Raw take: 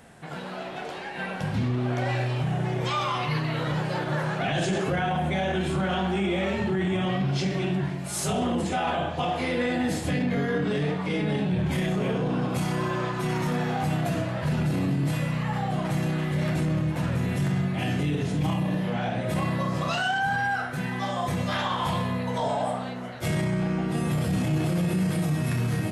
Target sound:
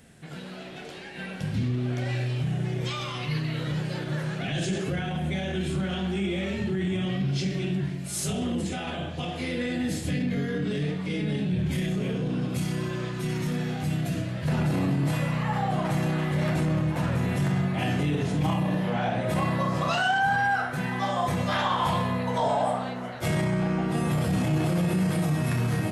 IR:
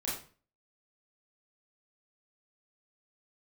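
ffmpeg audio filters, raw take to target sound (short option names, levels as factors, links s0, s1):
-af "asetnsamples=n=441:p=0,asendcmd='14.48 equalizer g 3',equalizer=f=910:t=o:w=1.6:g=-12"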